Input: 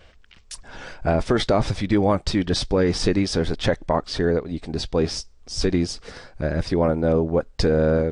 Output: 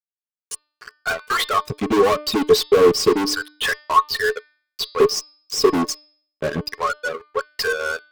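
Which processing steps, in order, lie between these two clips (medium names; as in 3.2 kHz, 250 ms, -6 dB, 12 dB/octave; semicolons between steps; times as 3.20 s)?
expander on every frequency bin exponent 2; LFO high-pass square 0.3 Hz 290–1500 Hz; reverb removal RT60 1.4 s; fuzz box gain 35 dB, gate -44 dBFS; de-hum 299.7 Hz, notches 17; small resonant body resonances 430/1100 Hz, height 17 dB, ringing for 85 ms; trim -5.5 dB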